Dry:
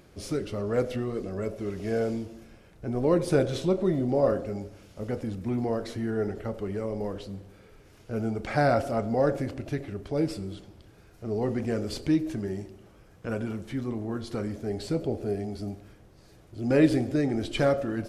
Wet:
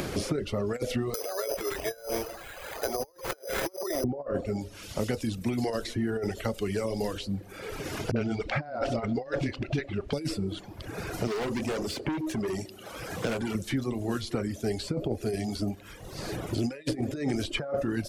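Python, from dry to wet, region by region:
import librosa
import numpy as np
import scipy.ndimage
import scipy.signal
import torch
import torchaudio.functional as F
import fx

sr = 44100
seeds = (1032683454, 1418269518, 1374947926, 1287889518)

y = fx.chain(x, sr, fx.highpass(hz=500.0, slope=24),
    fx.transient(attack_db=1, sustain_db=8),
    fx.resample_bad(factor=8, down='none', up='zero_stuff'), at=(1.14, 4.04))
y = fx.chain(y, sr, fx.lowpass(hz=3400.0, slope=12),
    fx.dispersion(late='highs', ms=50.0, hz=310.0), at=(8.11, 10.13))
y = fx.chain(y, sr, fx.highpass(hz=260.0, slope=6),
    fx.clip_hard(threshold_db=-34.0), at=(11.27, 13.55))
y = fx.over_compress(y, sr, threshold_db=-28.0, ratio=-0.5)
y = fx.dereverb_blind(y, sr, rt60_s=0.79)
y = fx.band_squash(y, sr, depth_pct=100)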